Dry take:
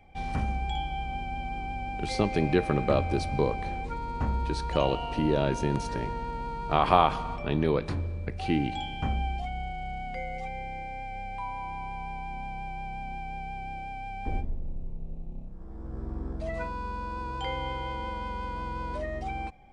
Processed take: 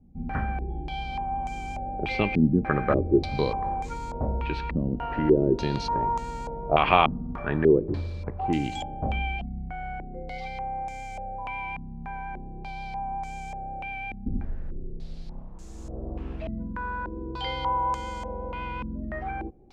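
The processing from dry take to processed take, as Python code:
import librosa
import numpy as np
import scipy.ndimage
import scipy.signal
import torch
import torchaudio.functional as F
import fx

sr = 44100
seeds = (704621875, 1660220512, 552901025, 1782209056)

y = fx.quant_dither(x, sr, seeds[0], bits=10, dither='triangular')
y = fx.filter_held_lowpass(y, sr, hz=3.4, low_hz=230.0, high_hz=7000.0)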